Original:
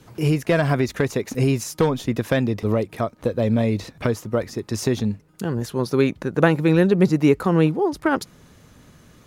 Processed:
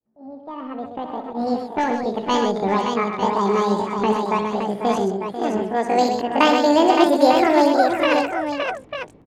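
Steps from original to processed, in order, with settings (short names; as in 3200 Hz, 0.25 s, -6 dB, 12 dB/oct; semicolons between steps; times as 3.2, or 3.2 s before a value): opening faded in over 2.62 s; pitch shift +10.5 st; low-pass opened by the level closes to 690 Hz, open at -14.5 dBFS; on a send: tapped delay 64/126/493/568/898 ms -9.5/-7/-11.5/-5.5/-9 dB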